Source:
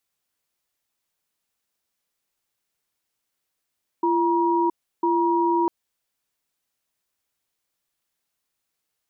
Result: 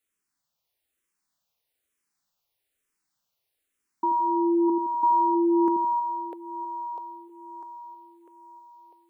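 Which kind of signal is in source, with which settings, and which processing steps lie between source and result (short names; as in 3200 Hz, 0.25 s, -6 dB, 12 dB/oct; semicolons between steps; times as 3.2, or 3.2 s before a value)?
cadence 341 Hz, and 954 Hz, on 0.67 s, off 0.33 s, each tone -20.5 dBFS 1.65 s
split-band echo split 430 Hz, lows 82 ms, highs 0.649 s, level -3.5 dB; endless phaser -1.1 Hz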